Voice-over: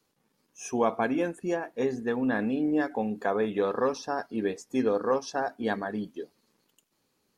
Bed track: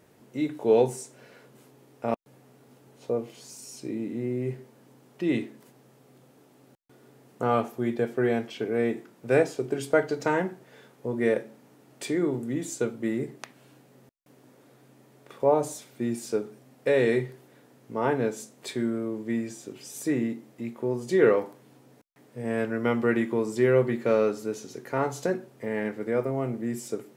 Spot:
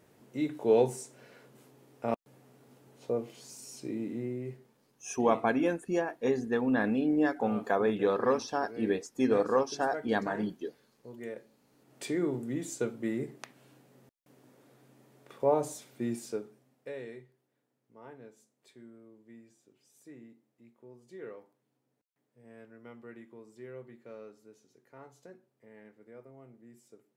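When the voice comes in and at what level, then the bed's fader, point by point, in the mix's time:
4.45 s, −0.5 dB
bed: 0:04.13 −3.5 dB
0:04.93 −17 dB
0:11.49 −17 dB
0:11.98 −4.5 dB
0:16.15 −4.5 dB
0:17.26 −24.5 dB

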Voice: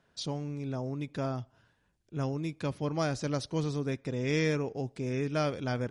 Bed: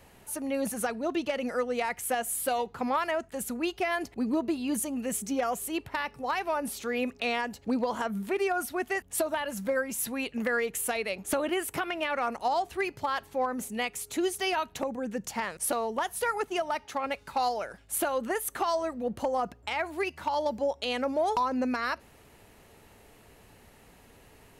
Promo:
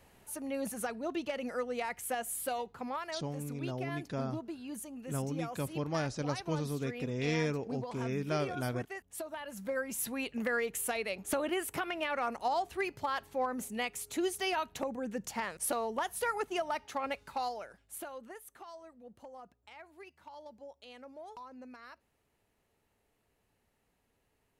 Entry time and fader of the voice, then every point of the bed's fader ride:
2.95 s, −3.5 dB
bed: 0:02.42 −6 dB
0:03.28 −12.5 dB
0:09.27 −12.5 dB
0:09.95 −4 dB
0:17.11 −4 dB
0:18.60 −21 dB

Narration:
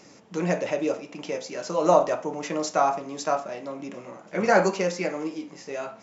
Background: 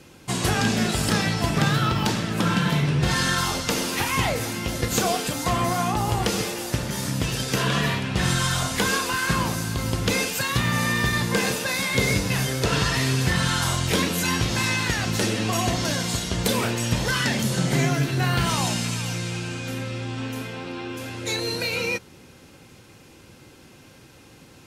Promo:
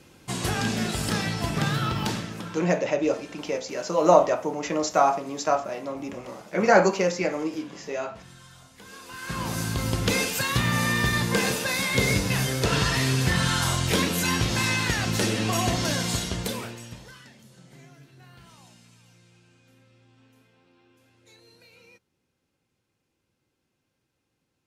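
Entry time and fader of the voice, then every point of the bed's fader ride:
2.20 s, +2.0 dB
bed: 0:02.16 −4.5 dB
0:02.80 −26.5 dB
0:08.78 −26.5 dB
0:09.60 −1 dB
0:16.22 −1 dB
0:17.34 −28.5 dB

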